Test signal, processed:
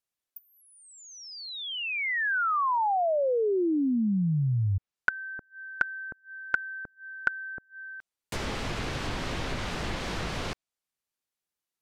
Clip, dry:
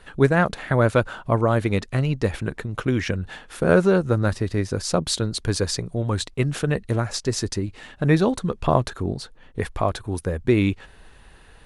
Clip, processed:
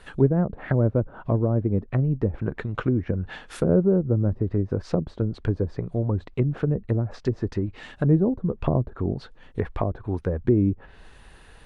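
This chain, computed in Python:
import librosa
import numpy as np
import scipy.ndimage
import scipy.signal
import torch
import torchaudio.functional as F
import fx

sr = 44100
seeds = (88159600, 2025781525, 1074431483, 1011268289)

y = fx.env_lowpass_down(x, sr, base_hz=410.0, full_db=-18.5)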